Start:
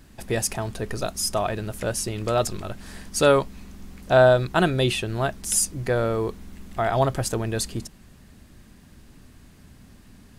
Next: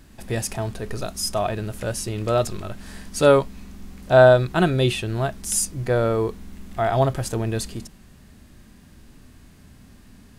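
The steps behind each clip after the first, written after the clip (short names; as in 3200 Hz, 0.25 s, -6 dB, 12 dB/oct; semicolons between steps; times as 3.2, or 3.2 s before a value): harmonic-percussive split harmonic +7 dB; gain -3.5 dB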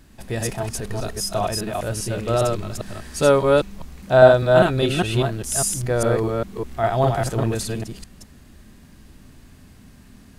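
reverse delay 0.201 s, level -1 dB; gain -1 dB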